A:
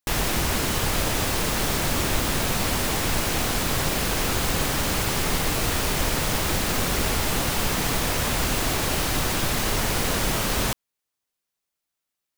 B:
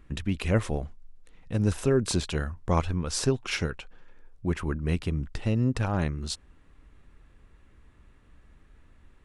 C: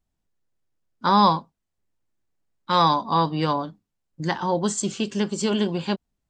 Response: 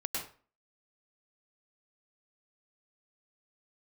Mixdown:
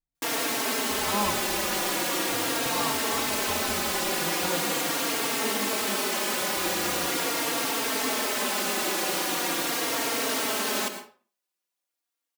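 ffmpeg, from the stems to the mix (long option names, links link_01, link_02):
-filter_complex "[0:a]highpass=frequency=240:width=0.5412,highpass=frequency=240:width=1.3066,adelay=150,volume=-2dB,asplit=2[link_01][link_02];[link_02]volume=-7dB[link_03];[1:a]acompressor=threshold=-29dB:ratio=6,adelay=800,volume=-12.5dB,asplit=3[link_04][link_05][link_06];[link_04]atrim=end=4.49,asetpts=PTS-STARTPTS,afade=type=out:start_time=4.486:duration=0.004:curve=hsin[link_07];[link_05]atrim=start=4.49:end=6.41,asetpts=PTS-STARTPTS,volume=0[link_08];[link_06]atrim=start=6.41,asetpts=PTS-STARTPTS,afade=type=in:duration=0.004:curve=hsin[link_09];[link_07][link_08][link_09]concat=n=3:v=0:a=1,asplit=2[link_10][link_11];[link_11]volume=-5dB[link_12];[2:a]volume=-11dB[link_13];[3:a]atrim=start_sample=2205[link_14];[link_03][link_12]amix=inputs=2:normalize=0[link_15];[link_15][link_14]afir=irnorm=-1:irlink=0[link_16];[link_01][link_10][link_13][link_16]amix=inputs=4:normalize=0,asplit=2[link_17][link_18];[link_18]adelay=3.8,afreqshift=-0.41[link_19];[link_17][link_19]amix=inputs=2:normalize=1"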